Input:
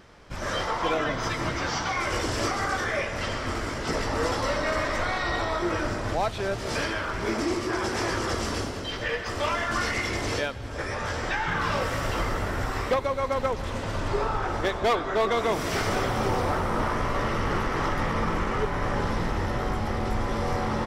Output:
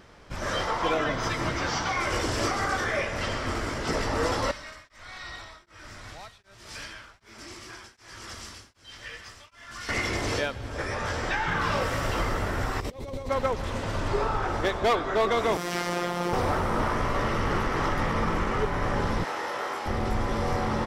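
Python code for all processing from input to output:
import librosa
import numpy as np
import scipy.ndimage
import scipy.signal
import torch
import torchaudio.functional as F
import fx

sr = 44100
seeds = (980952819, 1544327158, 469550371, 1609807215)

y = fx.chain(x, sr, fx.tone_stack(knobs='5-5-5'),
    fx.echo_single(ms=949, db=-10.0),
    fx.tremolo_abs(hz=1.3), at=(4.51, 9.89))
y = fx.chain(y, sr, fx.peak_eq(hz=1400.0, db=-14.5, octaves=1.6),
    fx.over_compress(threshold_db=-34.0, ratio=-0.5), at=(12.8, 13.29))
y = fx.chain(y, sr, fx.highpass(hz=120.0, slope=24),
    fx.robotise(hz=175.0), at=(15.57, 16.33))
y = fx.chain(y, sr, fx.highpass(hz=550.0, slope=12),
    fx.doubler(ms=25.0, db=-3.5), at=(19.24, 19.86))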